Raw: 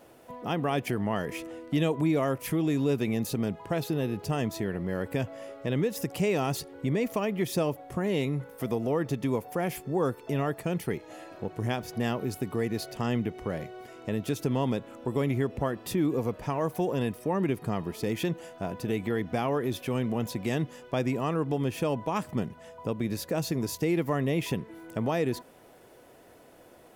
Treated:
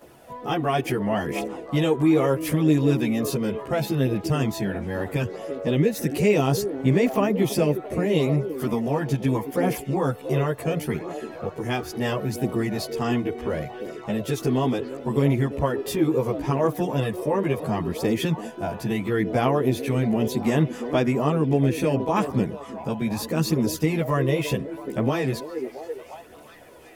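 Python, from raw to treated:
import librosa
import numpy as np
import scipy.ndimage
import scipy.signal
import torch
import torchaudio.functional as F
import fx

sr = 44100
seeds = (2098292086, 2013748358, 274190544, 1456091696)

y = fx.echo_stepped(x, sr, ms=340, hz=340.0, octaves=0.7, feedback_pct=70, wet_db=-7.0)
y = fx.chorus_voices(y, sr, voices=2, hz=0.36, base_ms=14, depth_ms=1.4, mix_pct=60)
y = fx.wow_flutter(y, sr, seeds[0], rate_hz=2.1, depth_cents=16.0)
y = y * librosa.db_to_amplitude(8.0)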